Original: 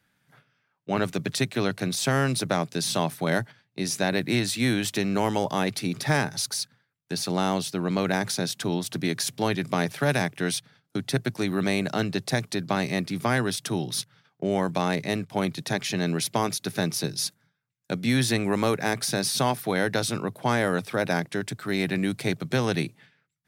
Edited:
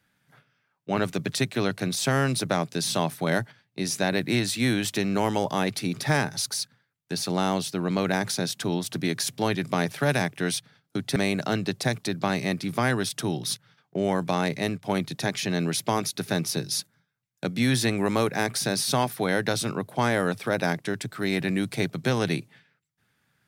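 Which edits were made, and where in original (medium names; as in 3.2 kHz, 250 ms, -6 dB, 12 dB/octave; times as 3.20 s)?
11.16–11.63 s: delete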